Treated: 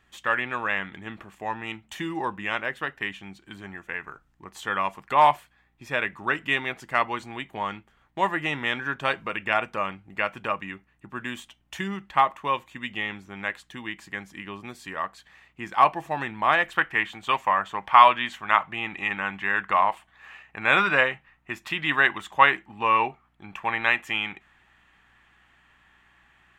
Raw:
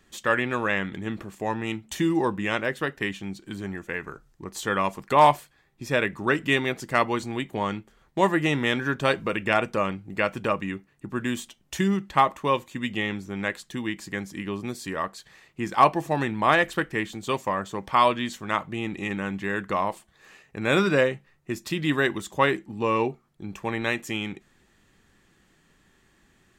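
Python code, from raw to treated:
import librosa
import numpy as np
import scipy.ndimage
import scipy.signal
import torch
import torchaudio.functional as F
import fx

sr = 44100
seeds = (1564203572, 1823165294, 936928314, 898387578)

y = fx.add_hum(x, sr, base_hz=60, snr_db=34)
y = fx.band_shelf(y, sr, hz=1500.0, db=fx.steps((0.0, 9.0), (16.75, 15.5)), octaves=2.6)
y = F.gain(torch.from_numpy(y), -9.0).numpy()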